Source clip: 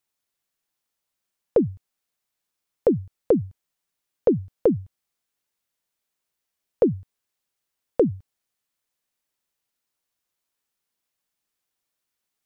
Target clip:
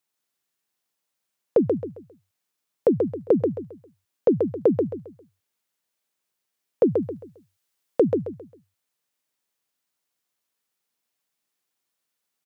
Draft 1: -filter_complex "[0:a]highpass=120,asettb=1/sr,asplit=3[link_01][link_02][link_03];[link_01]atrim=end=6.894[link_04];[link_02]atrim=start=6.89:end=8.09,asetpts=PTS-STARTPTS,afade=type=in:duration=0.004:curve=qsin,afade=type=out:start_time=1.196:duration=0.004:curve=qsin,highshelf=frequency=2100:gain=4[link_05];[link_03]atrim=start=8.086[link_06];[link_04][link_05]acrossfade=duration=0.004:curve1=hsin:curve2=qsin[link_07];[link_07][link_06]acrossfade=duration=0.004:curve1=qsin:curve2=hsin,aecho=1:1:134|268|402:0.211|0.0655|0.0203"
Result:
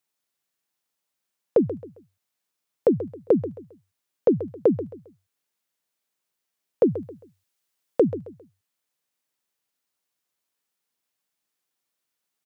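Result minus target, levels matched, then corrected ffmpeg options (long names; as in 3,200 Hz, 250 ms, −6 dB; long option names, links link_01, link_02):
echo-to-direct −8.5 dB
-filter_complex "[0:a]highpass=120,asettb=1/sr,asplit=3[link_01][link_02][link_03];[link_01]atrim=end=6.894[link_04];[link_02]atrim=start=6.89:end=8.09,asetpts=PTS-STARTPTS,afade=type=in:duration=0.004:curve=qsin,afade=type=out:start_time=1.196:duration=0.004:curve=qsin,highshelf=frequency=2100:gain=4[link_05];[link_03]atrim=start=8.086[link_06];[link_04][link_05]acrossfade=duration=0.004:curve1=hsin:curve2=qsin[link_07];[link_07][link_06]acrossfade=duration=0.004:curve1=qsin:curve2=hsin,aecho=1:1:134|268|402|536:0.562|0.174|0.054|0.0168"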